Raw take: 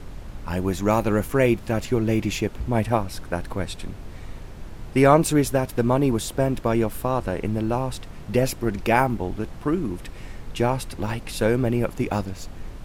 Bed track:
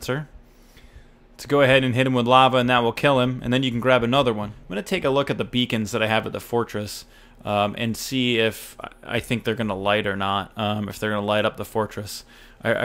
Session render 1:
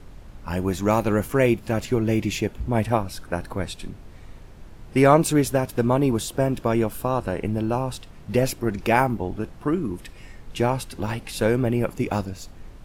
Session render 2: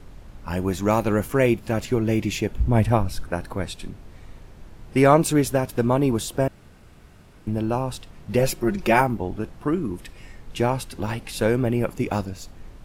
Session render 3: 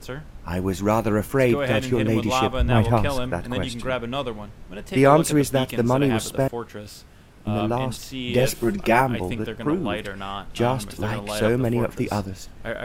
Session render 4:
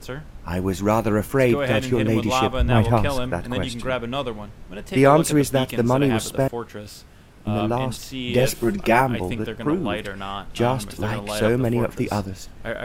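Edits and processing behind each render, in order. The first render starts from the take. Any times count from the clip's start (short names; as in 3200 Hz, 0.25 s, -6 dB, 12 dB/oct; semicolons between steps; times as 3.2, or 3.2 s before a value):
noise print and reduce 6 dB
2.51–3.28 low shelf 130 Hz +10.5 dB; 6.48–7.47 room tone; 8.39–9.01 comb 5.5 ms, depth 68%
add bed track -8.5 dB
gain +1 dB; limiter -3 dBFS, peak gain reduction 2 dB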